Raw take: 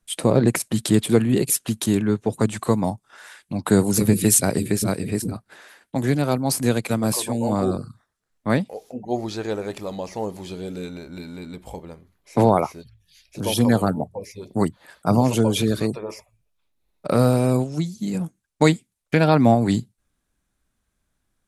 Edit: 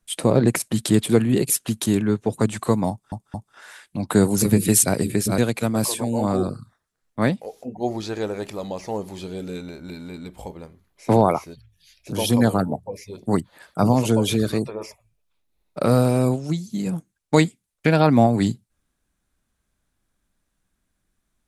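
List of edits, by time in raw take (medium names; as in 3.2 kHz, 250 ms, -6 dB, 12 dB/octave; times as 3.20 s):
2.90 s: stutter 0.22 s, 3 plays
4.94–6.66 s: delete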